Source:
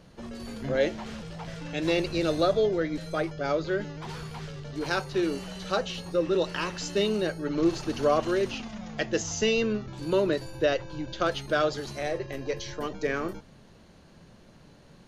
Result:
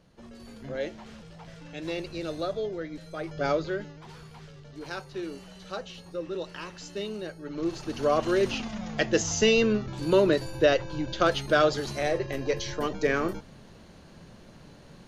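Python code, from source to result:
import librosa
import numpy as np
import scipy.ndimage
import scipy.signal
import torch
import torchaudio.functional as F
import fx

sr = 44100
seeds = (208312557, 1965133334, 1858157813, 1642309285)

y = fx.gain(x, sr, db=fx.line((3.19, -7.5), (3.43, 3.0), (4.02, -8.5), (7.4, -8.5), (8.51, 3.5)))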